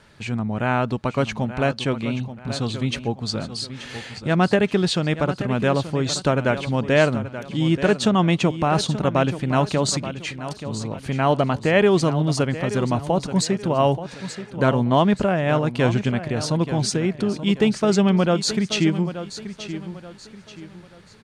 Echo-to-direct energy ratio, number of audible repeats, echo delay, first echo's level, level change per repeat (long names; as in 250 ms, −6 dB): −11.5 dB, 3, 880 ms, −12.0 dB, −9.0 dB